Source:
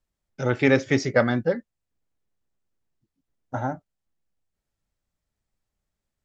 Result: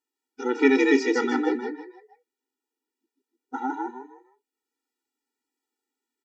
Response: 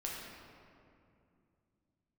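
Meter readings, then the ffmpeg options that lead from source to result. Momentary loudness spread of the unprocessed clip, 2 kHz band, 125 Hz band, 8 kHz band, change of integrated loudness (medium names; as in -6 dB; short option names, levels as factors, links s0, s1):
12 LU, -0.5 dB, under -30 dB, no reading, -0.5 dB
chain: -filter_complex "[0:a]asplit=5[s0][s1][s2][s3][s4];[s1]adelay=156,afreqshift=63,volume=0.708[s5];[s2]adelay=312,afreqshift=126,volume=0.219[s6];[s3]adelay=468,afreqshift=189,volume=0.0684[s7];[s4]adelay=624,afreqshift=252,volume=0.0211[s8];[s0][s5][s6][s7][s8]amix=inputs=5:normalize=0,afftfilt=real='re*eq(mod(floor(b*sr/1024/250),2),1)':imag='im*eq(mod(floor(b*sr/1024/250),2),1)':win_size=1024:overlap=0.75,volume=1.19"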